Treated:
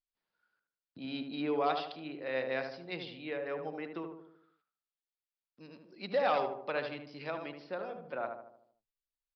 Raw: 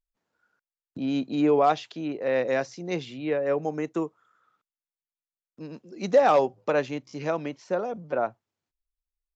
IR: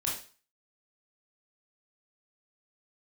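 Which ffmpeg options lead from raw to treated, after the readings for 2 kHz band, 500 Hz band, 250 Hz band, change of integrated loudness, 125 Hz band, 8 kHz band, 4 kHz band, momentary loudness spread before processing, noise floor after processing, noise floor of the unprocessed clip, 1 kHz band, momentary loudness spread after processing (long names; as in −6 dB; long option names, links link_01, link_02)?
−5.5 dB, −11.0 dB, −12.0 dB, −10.0 dB, −12.5 dB, can't be measured, −3.0 dB, 14 LU, below −85 dBFS, below −85 dBFS, −9.0 dB, 15 LU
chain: -filter_complex "[0:a]tiltshelf=frequency=1300:gain=-6.5,asplit=2[link_01][link_02];[link_02]adelay=76,lowpass=frequency=1300:poles=1,volume=-4.5dB,asplit=2[link_03][link_04];[link_04]adelay=76,lowpass=frequency=1300:poles=1,volume=0.54,asplit=2[link_05][link_06];[link_06]adelay=76,lowpass=frequency=1300:poles=1,volume=0.54,asplit=2[link_07][link_08];[link_08]adelay=76,lowpass=frequency=1300:poles=1,volume=0.54,asplit=2[link_09][link_10];[link_10]adelay=76,lowpass=frequency=1300:poles=1,volume=0.54,asplit=2[link_11][link_12];[link_12]adelay=76,lowpass=frequency=1300:poles=1,volume=0.54,asplit=2[link_13][link_14];[link_14]adelay=76,lowpass=frequency=1300:poles=1,volume=0.54[link_15];[link_03][link_05][link_07][link_09][link_11][link_13][link_15]amix=inputs=7:normalize=0[link_16];[link_01][link_16]amix=inputs=2:normalize=0,aresample=11025,aresample=44100,volume=-8dB"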